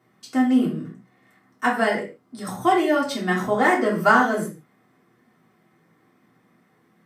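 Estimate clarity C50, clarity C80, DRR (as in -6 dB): 7.5 dB, 12.5 dB, -4.5 dB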